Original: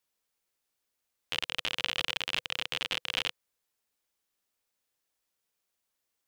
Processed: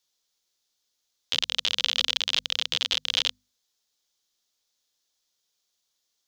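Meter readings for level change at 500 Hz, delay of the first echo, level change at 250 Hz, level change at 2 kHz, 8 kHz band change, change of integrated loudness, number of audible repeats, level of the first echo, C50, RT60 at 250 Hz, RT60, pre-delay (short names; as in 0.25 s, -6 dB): 0.0 dB, none, -0.5 dB, +1.0 dB, +9.5 dB, +7.0 dB, none, none, none, none, none, none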